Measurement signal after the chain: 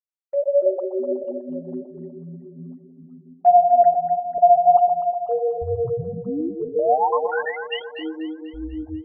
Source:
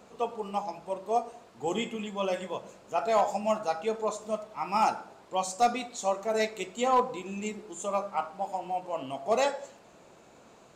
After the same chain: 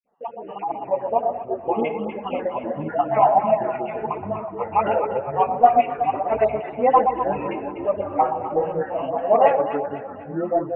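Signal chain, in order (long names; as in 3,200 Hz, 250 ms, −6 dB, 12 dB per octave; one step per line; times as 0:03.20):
time-frequency cells dropped at random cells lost 43%
all-pass dispersion highs, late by 42 ms, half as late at 920 Hz
noise gate −48 dBFS, range −16 dB
automatic gain control gain up to 10 dB
delay that swaps between a low-pass and a high-pass 123 ms, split 870 Hz, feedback 67%, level −5 dB
flanger 1.4 Hz, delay 2.6 ms, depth 6.8 ms, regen +2%
Chebyshev low-pass with heavy ripple 2,900 Hz, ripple 3 dB
delay with pitch and tempo change per echo 123 ms, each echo −7 semitones, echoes 3, each echo −6 dB
parametric band 760 Hz +7.5 dB 1.1 octaves
level −1 dB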